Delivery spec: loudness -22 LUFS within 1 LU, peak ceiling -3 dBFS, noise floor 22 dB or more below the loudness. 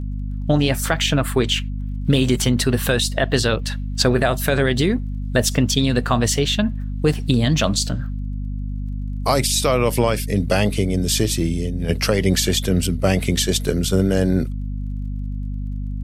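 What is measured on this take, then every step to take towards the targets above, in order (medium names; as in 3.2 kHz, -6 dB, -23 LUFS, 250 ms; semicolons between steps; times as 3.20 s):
tick rate 24 per s; hum 50 Hz; highest harmonic 250 Hz; hum level -23 dBFS; loudness -20.0 LUFS; peak level -3.5 dBFS; loudness target -22.0 LUFS
-> de-click; hum notches 50/100/150/200/250 Hz; trim -2 dB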